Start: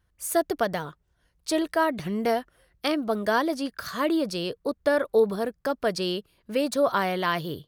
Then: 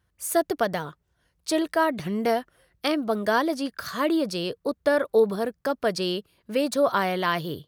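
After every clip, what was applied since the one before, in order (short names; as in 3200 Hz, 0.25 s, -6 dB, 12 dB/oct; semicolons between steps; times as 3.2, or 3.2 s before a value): HPF 61 Hz; gain +1 dB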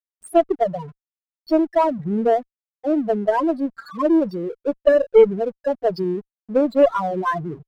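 loudest bins only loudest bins 4; backlash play -44 dBFS; added harmonics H 2 -21 dB, 7 -28 dB, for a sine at -11.5 dBFS; gain +8 dB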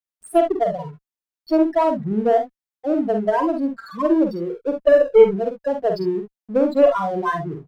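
early reflections 47 ms -5.5 dB, 66 ms -10 dB; gain -1 dB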